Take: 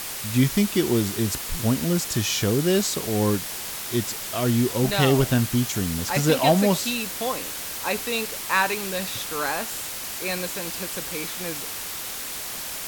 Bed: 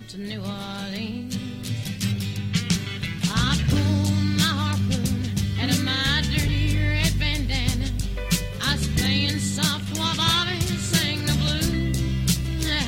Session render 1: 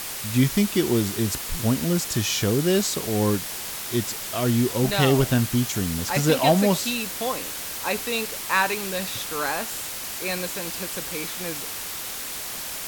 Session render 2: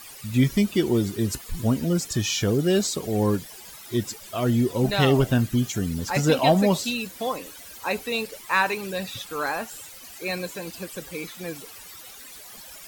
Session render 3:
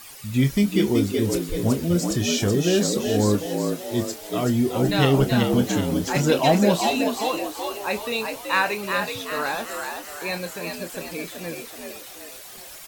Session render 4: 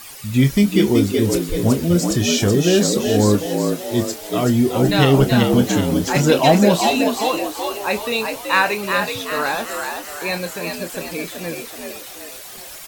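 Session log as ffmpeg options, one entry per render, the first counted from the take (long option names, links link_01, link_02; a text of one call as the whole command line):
ffmpeg -i in.wav -af anull out.wav
ffmpeg -i in.wav -af "afftdn=noise_reduction=15:noise_floor=-33" out.wav
ffmpeg -i in.wav -filter_complex "[0:a]asplit=2[link_01][link_02];[link_02]adelay=29,volume=-11dB[link_03];[link_01][link_03]amix=inputs=2:normalize=0,asplit=7[link_04][link_05][link_06][link_07][link_08][link_09][link_10];[link_05]adelay=378,afreqshift=67,volume=-5dB[link_11];[link_06]adelay=756,afreqshift=134,volume=-11.7dB[link_12];[link_07]adelay=1134,afreqshift=201,volume=-18.5dB[link_13];[link_08]adelay=1512,afreqshift=268,volume=-25.2dB[link_14];[link_09]adelay=1890,afreqshift=335,volume=-32dB[link_15];[link_10]adelay=2268,afreqshift=402,volume=-38.7dB[link_16];[link_04][link_11][link_12][link_13][link_14][link_15][link_16]amix=inputs=7:normalize=0" out.wav
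ffmpeg -i in.wav -af "volume=5dB,alimiter=limit=-2dB:level=0:latency=1" out.wav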